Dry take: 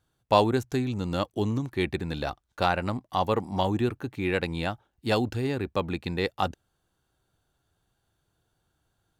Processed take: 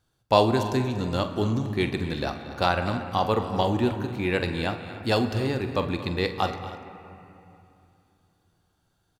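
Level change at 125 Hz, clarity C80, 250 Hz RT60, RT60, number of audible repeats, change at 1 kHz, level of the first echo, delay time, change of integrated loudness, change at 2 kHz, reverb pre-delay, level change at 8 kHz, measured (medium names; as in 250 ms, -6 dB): +2.5 dB, 8.5 dB, 3.2 s, 2.8 s, 3, +2.0 dB, -12.0 dB, 45 ms, +2.0 dB, +2.0 dB, 8 ms, +2.5 dB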